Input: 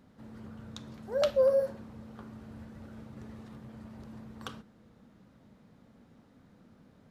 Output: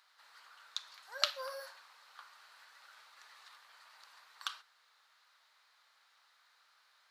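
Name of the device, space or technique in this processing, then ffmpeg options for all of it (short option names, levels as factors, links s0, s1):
headphones lying on a table: -af "highpass=f=1100:w=0.5412,highpass=f=1100:w=1.3066,equalizer=f=4300:t=o:w=0.52:g=8,volume=1.41"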